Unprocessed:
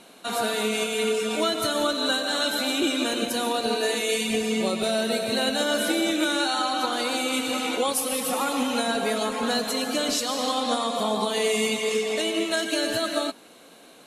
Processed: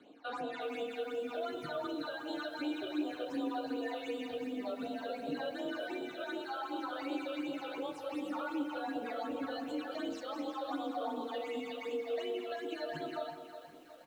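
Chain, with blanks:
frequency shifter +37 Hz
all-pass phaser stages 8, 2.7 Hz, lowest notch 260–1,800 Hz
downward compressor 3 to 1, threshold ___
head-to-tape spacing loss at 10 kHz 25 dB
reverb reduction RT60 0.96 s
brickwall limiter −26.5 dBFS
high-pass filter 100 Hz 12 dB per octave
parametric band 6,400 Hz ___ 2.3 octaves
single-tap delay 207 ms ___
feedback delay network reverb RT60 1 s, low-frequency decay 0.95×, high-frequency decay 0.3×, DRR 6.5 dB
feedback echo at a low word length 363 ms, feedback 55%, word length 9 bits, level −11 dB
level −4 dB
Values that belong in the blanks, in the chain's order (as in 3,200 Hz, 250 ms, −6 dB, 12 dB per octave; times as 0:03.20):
−29 dBFS, −3.5 dB, −15.5 dB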